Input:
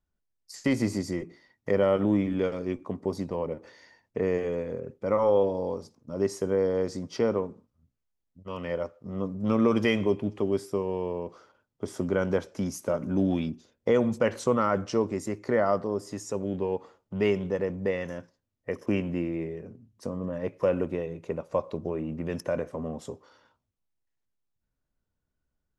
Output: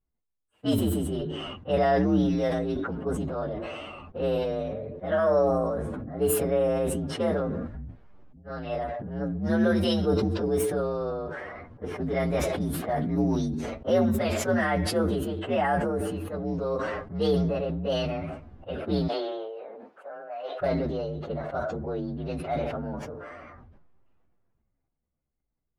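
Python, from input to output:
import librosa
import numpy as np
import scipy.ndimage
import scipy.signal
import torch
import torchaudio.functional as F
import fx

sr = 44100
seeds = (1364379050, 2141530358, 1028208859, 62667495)

y = fx.partial_stretch(x, sr, pct=120)
y = fx.high_shelf(y, sr, hz=5900.0, db=-11.5, at=(17.41, 17.9))
y = fx.highpass(y, sr, hz=550.0, slope=24, at=(19.07, 20.6), fade=0.02)
y = fx.env_lowpass(y, sr, base_hz=1300.0, full_db=-24.5)
y = fx.sustainer(y, sr, db_per_s=24.0)
y = y * librosa.db_to_amplitude(1.0)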